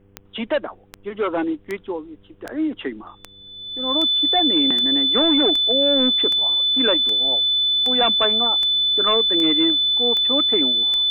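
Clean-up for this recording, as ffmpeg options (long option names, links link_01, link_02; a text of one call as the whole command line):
ffmpeg -i in.wav -af "adeclick=threshold=4,bandreject=frequency=99:width_type=h:width=4,bandreject=frequency=198:width_type=h:width=4,bandreject=frequency=297:width_type=h:width=4,bandreject=frequency=396:width_type=h:width=4,bandreject=frequency=495:width_type=h:width=4,bandreject=frequency=3500:width=30,agate=range=-21dB:threshold=-39dB" out.wav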